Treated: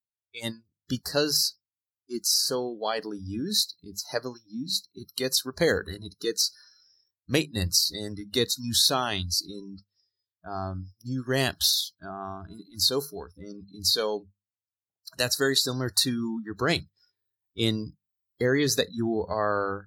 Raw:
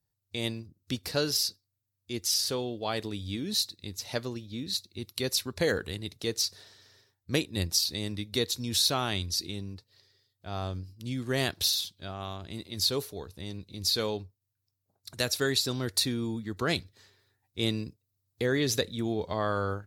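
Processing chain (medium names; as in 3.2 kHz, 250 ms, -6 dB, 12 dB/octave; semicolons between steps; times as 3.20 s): hum notches 50/100/150/200 Hz; spectral noise reduction 28 dB; trim +4 dB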